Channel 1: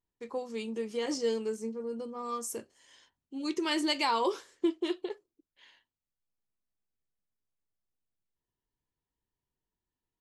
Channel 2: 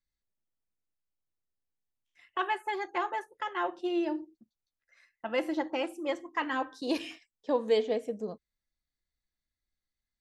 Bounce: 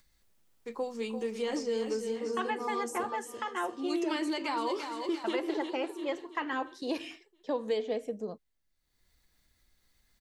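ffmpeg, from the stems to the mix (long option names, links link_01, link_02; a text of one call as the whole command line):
ffmpeg -i stem1.wav -i stem2.wav -filter_complex "[0:a]alimiter=limit=-23.5dB:level=0:latency=1:release=79,adelay=450,volume=2dB,asplit=2[link_01][link_02];[link_02]volume=-9dB[link_03];[1:a]acompressor=mode=upward:threshold=-51dB:ratio=2.5,volume=-0.5dB[link_04];[link_03]aecho=0:1:342|684|1026|1368|1710|2052|2394:1|0.5|0.25|0.125|0.0625|0.0312|0.0156[link_05];[link_01][link_04][link_05]amix=inputs=3:normalize=0,acrossover=split=340|2300[link_06][link_07][link_08];[link_06]acompressor=threshold=-38dB:ratio=4[link_09];[link_07]acompressor=threshold=-30dB:ratio=4[link_10];[link_08]acompressor=threshold=-44dB:ratio=4[link_11];[link_09][link_10][link_11]amix=inputs=3:normalize=0" out.wav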